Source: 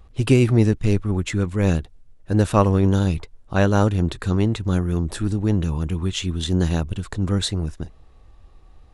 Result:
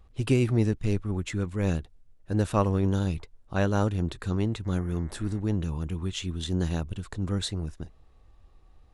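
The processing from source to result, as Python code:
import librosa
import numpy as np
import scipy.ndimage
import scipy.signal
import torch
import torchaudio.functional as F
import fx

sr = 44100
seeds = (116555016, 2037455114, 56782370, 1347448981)

y = fx.dmg_buzz(x, sr, base_hz=120.0, harmonics=18, level_db=-48.0, tilt_db=-2, odd_only=False, at=(4.64, 5.39), fade=0.02)
y = y * 10.0 ** (-7.5 / 20.0)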